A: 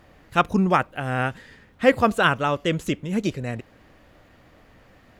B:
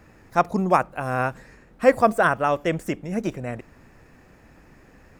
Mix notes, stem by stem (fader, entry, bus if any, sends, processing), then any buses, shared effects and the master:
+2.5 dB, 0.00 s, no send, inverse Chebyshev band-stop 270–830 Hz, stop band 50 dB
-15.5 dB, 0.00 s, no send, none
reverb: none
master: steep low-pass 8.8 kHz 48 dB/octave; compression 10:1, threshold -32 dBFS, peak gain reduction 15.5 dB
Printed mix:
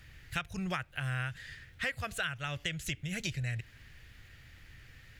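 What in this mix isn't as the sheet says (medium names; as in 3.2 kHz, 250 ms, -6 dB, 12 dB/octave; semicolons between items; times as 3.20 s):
stem B: polarity flipped; master: missing steep low-pass 8.8 kHz 48 dB/octave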